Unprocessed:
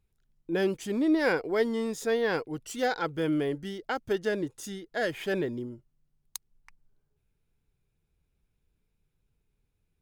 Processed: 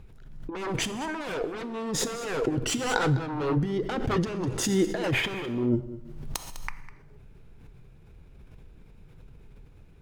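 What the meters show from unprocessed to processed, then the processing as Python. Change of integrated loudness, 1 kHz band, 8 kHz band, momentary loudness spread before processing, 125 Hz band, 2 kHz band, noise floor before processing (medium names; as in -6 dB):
+1.0 dB, +2.5 dB, +10.0 dB, 13 LU, +11.0 dB, +0.5 dB, -78 dBFS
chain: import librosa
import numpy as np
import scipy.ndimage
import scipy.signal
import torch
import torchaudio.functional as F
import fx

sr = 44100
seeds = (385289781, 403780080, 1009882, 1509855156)

p1 = fx.high_shelf(x, sr, hz=7900.0, db=-8.5)
p2 = fx.fold_sine(p1, sr, drive_db=16, ceiling_db=-14.0)
p3 = p1 + (p2 * 10.0 ** (-5.0 / 20.0))
p4 = fx.over_compress(p3, sr, threshold_db=-27.0, ratio=-0.5)
p5 = fx.high_shelf(p4, sr, hz=2700.0, db=-10.0)
p6 = p5 + fx.echo_single(p5, sr, ms=202, db=-15.0, dry=0)
p7 = fx.rev_gated(p6, sr, seeds[0], gate_ms=350, shape='falling', drr_db=11.0)
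y = fx.pre_swell(p7, sr, db_per_s=43.0)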